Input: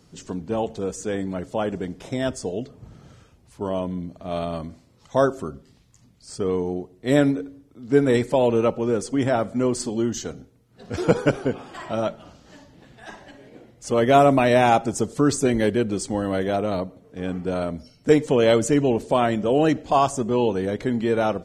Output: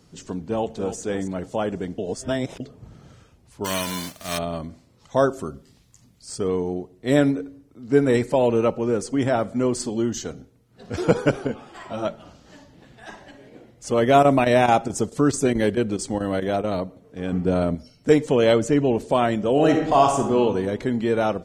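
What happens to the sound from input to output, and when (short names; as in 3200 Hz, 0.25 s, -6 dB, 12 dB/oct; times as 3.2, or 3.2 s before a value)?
0.47–0.99 echo throw 0.28 s, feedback 30%, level -9.5 dB
1.98–2.6 reverse
3.64–4.37 spectral whitening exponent 0.3
5.33–6.48 high shelf 6000 Hz +7 dB
7.3–9.19 notch 3400 Hz, Q 13
11.47–12.05 ensemble effect
14.03–16.74 chopper 4.6 Hz, depth 65%, duty 90%
17.32–17.75 low shelf 490 Hz +7.5 dB
18.53–18.94 high shelf 5400 Hz -9 dB
19.52–20.39 reverb throw, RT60 1 s, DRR 2.5 dB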